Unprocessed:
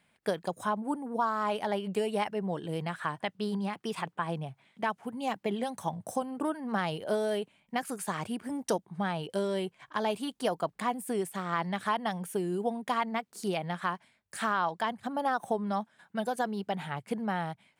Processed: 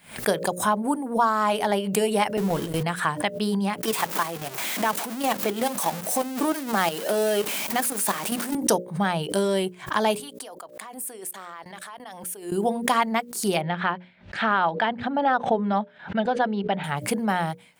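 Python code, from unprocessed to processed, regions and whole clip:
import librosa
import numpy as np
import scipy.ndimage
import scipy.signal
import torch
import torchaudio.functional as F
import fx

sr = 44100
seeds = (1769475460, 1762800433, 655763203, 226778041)

y = fx.chain(x, sr, fx.zero_step(step_db=-38.0),
    fx.gate_hold(open_db=-22.0, close_db=-29.0, hold_ms=71.0, range_db=-21, attack_ms=1.4, release_ms=100.0), at=(2.37, 2.83))
y = fx.chain(y, sr, fx.zero_step(step_db=-32.0),
    fx.highpass(hz=210.0, slope=24),
    fx.level_steps(step_db=10), at=(3.83, 8.55))
y = fx.chain(y, sr, fx.highpass(hz=400.0, slope=12),
    fx.level_steps(step_db=24), at=(10.2, 12.52))
y = fx.chain(y, sr, fx.lowpass(hz=3500.0, slope=24),
    fx.notch(hz=1100.0, q=9.0), at=(13.61, 16.84))
y = fx.high_shelf(y, sr, hz=7900.0, db=11.5)
y = fx.hum_notches(y, sr, base_hz=60, count=10)
y = fx.pre_swell(y, sr, db_per_s=140.0)
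y = F.gain(torch.from_numpy(y), 8.0).numpy()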